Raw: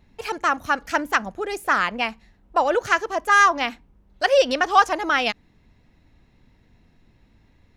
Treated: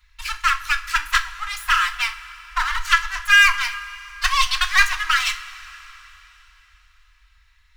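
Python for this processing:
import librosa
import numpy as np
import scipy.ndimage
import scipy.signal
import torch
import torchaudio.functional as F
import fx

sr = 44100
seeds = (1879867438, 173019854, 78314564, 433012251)

y = fx.lower_of_two(x, sr, delay_ms=3.0)
y = scipy.signal.sosfilt(scipy.signal.cheby2(4, 40, [110.0, 650.0], 'bandstop', fs=sr, output='sos'), y)
y = fx.rev_double_slope(y, sr, seeds[0], early_s=0.29, late_s=3.6, knee_db=-18, drr_db=6.5)
y = F.gain(torch.from_numpy(y), 5.0).numpy()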